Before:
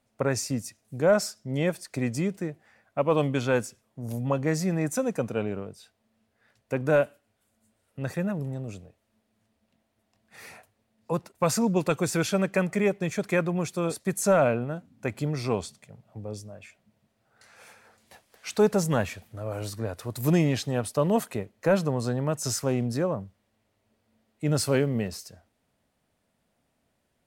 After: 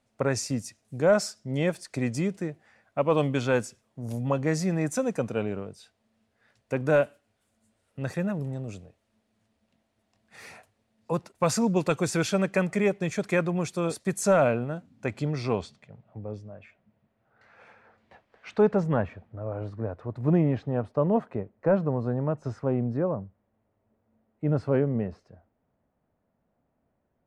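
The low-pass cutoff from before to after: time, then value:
14.74 s 9.5 kHz
15.47 s 5.1 kHz
16.19 s 2.1 kHz
18.69 s 2.1 kHz
19.15 s 1.2 kHz

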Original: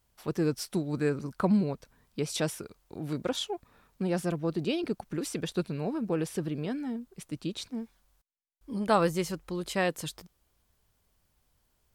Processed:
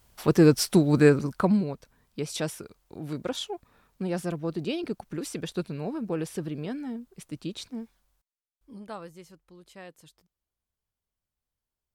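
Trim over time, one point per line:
1.07 s +10.5 dB
1.65 s -0.5 dB
7.83 s -0.5 dB
8.73 s -9.5 dB
9.02 s -17.5 dB

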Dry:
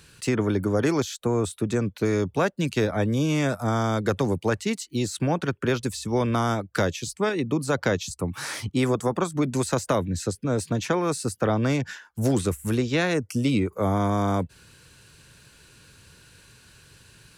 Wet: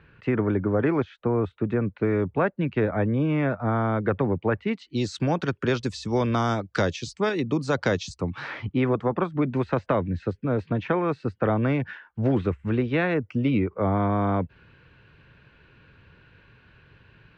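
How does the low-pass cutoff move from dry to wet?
low-pass 24 dB/octave
4.63 s 2.3 kHz
5.07 s 5.8 kHz
8.12 s 5.8 kHz
8.55 s 2.7 kHz

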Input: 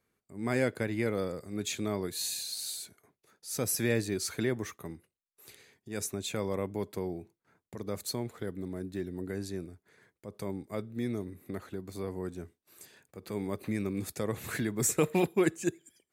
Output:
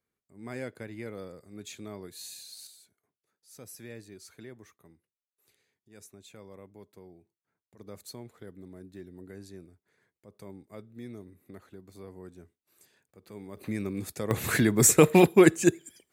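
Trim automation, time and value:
-9 dB
from 2.67 s -16 dB
from 7.79 s -9 dB
from 13.57 s 0 dB
from 14.31 s +9 dB

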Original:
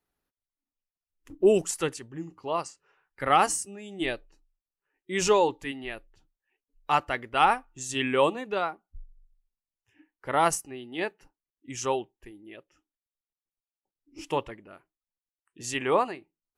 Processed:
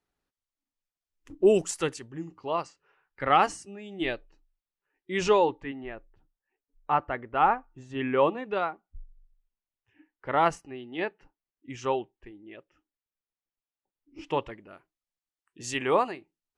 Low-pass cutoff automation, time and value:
2.12 s 8.3 kHz
2.66 s 4 kHz
5.34 s 4 kHz
5.76 s 1.5 kHz
7.97 s 1.5 kHz
8.53 s 3.1 kHz
14.21 s 3.1 kHz
14.61 s 8 kHz

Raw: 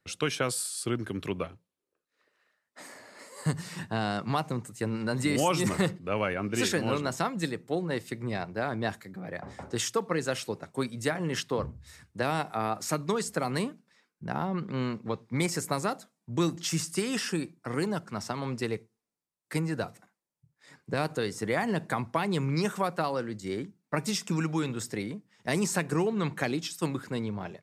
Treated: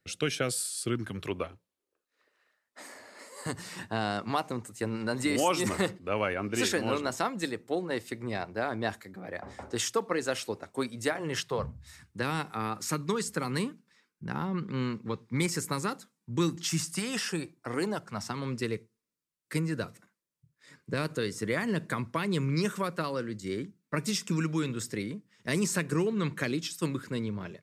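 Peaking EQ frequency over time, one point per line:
peaking EQ -14 dB 0.42 oct
0.85 s 990 Hz
1.34 s 150 Hz
11.08 s 150 Hz
12.19 s 670 Hz
16.53 s 670 Hz
17.88 s 130 Hz
18.39 s 770 Hz

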